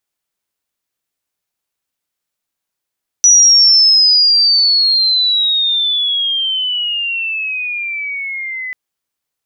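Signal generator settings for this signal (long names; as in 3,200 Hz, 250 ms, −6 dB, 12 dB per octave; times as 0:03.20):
glide logarithmic 5,900 Hz → 2,000 Hz −4 dBFS → −21 dBFS 5.49 s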